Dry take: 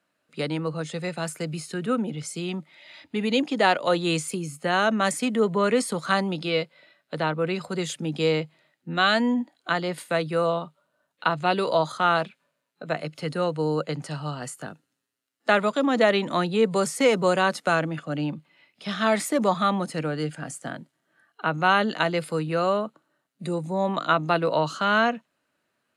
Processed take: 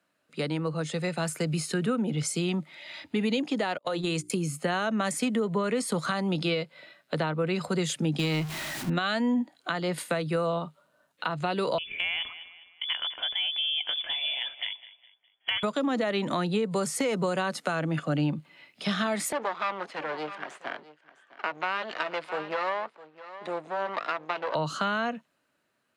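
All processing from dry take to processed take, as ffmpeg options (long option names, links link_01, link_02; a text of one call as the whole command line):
ffmpeg -i in.wav -filter_complex "[0:a]asettb=1/sr,asplit=3[link_01][link_02][link_03];[link_01]atrim=end=3.784[link_04];[link_02]atrim=start=3.78:end=4.3,asetpts=PTS-STARTPTS,afade=type=in:duration=0.004:curve=qsin,afade=type=out:start_time=0.516:duration=0.004:curve=qsin,agate=range=-36dB:threshold=-29dB:ratio=16:release=100:detection=peak,bandreject=frequency=60:width_type=h:width=6,bandreject=frequency=120:width_type=h:width=6,bandreject=frequency=180:width_type=h:width=6,bandreject=frequency=240:width_type=h:width=6,bandreject=frequency=300:width_type=h:width=6,bandreject=frequency=360:width_type=h:width=6,bandreject=frequency=420:width_type=h:width=6,acompressor=threshold=-26dB:ratio=6:attack=3.2:release=140:knee=1:detection=peak[link_05];[link_03]atrim=start=4.296[link_06];[link_04][link_05]acrossfade=duration=0.004:curve1=hsin:curve2=qsin[link_07];[link_07][link_06]acrossfade=duration=0.004:curve1=qsin:curve2=hsin,asettb=1/sr,asplit=3[link_08][link_09][link_10];[link_08]atrim=end=8.194[link_11];[link_09]atrim=start=8.19:end=8.9,asetpts=PTS-STARTPTS,afade=type=in:duration=0.004:curve=qsin,afade=type=out:start_time=0.706:duration=0.004:curve=qsin,aeval=exprs='val(0)+0.5*0.02*sgn(val(0))':channel_layout=same,equalizer=frequency=500:width=4.7:gain=-14.5[link_12];[link_10]atrim=start=8.896[link_13];[link_11][link_12]acrossfade=duration=0.004:curve1=hsin:curve2=qsin[link_14];[link_14][link_13]acrossfade=duration=0.004:curve1=qsin:curve2=hsin,asettb=1/sr,asplit=3[link_15][link_16][link_17];[link_15]atrim=end=11.784[link_18];[link_16]atrim=start=11.78:end=15.63,asetpts=PTS-STARTPTS,afade=type=in:duration=0.004:curve=qsin,afade=type=out:start_time=3.846:duration=0.004:curve=qsin,lowpass=frequency=3100:width_type=q:width=0.5098,lowpass=frequency=3100:width_type=q:width=0.6013,lowpass=frequency=3100:width_type=q:width=0.9,lowpass=frequency=3100:width_type=q:width=2.563,afreqshift=-3600,acompressor=threshold=-33dB:ratio=2:attack=3.2:release=140:knee=1:detection=peak,aecho=1:1:205|410|615:0.126|0.0504|0.0201,atrim=end_sample=169785[link_19];[link_17]atrim=start=15.626[link_20];[link_18][link_19]acrossfade=duration=0.004:curve1=hsin:curve2=qsin[link_21];[link_21][link_20]acrossfade=duration=0.004:curve1=qsin:curve2=hsin,asettb=1/sr,asplit=3[link_22][link_23][link_24];[link_22]atrim=end=19.324[link_25];[link_23]atrim=start=19.32:end=24.55,asetpts=PTS-STARTPTS,afade=type=in:duration=0.004:curve=qsin,afade=type=out:start_time=5.226:duration=0.004:curve=qsin,aeval=exprs='max(val(0),0)':channel_layout=same,highpass=570,lowpass=3000,aecho=1:1:657:0.112,atrim=end_sample=230643[link_26];[link_24]atrim=start=24.546[link_27];[link_25][link_26]acrossfade=duration=0.004:curve1=hsin:curve2=qsin[link_28];[link_28][link_27]acrossfade=duration=0.004:curve1=qsin:curve2=hsin,dynaudnorm=framelen=150:gausssize=17:maxgain=6.5dB,alimiter=limit=-12dB:level=0:latency=1:release=228,acrossover=split=140[link_29][link_30];[link_30]acompressor=threshold=-28dB:ratio=2.5[link_31];[link_29][link_31]amix=inputs=2:normalize=0" out.wav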